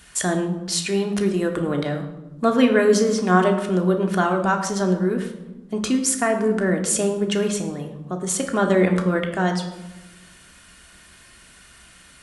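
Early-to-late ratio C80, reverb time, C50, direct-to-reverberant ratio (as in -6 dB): 10.5 dB, 1.1 s, 8.0 dB, 3.0 dB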